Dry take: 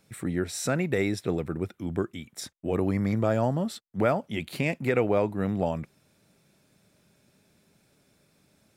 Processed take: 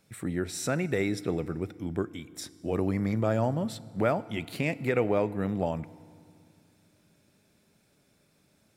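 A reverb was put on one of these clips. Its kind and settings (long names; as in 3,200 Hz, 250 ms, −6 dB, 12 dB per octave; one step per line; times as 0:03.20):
feedback delay network reverb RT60 2.3 s, low-frequency decay 1.4×, high-frequency decay 0.8×, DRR 17.5 dB
level −2 dB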